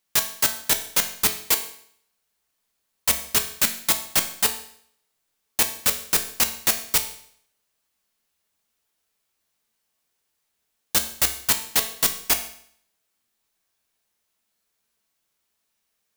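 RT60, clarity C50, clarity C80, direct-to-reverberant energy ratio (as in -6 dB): 0.60 s, 11.0 dB, 14.0 dB, 5.5 dB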